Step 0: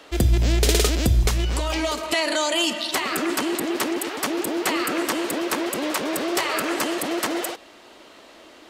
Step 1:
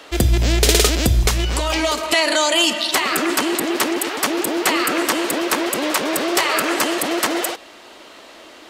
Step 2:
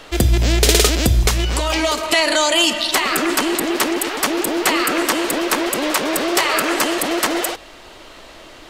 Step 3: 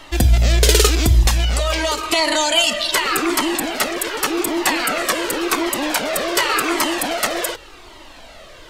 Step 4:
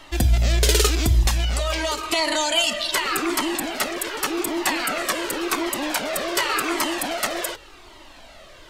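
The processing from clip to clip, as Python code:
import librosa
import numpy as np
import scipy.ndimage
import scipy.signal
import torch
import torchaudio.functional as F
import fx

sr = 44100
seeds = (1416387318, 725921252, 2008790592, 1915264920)

y1 = fx.low_shelf(x, sr, hz=450.0, db=-4.5)
y1 = F.gain(torch.from_numpy(y1), 6.5).numpy()
y2 = fx.dmg_noise_colour(y1, sr, seeds[0], colour='brown', level_db=-49.0)
y2 = F.gain(torch.from_numpy(y2), 1.0).numpy()
y3 = fx.comb_cascade(y2, sr, direction='falling', hz=0.88)
y3 = F.gain(torch.from_numpy(y3), 3.5).numpy()
y4 = fx.notch(y3, sr, hz=480.0, q=12.0)
y4 = F.gain(torch.from_numpy(y4), -4.5).numpy()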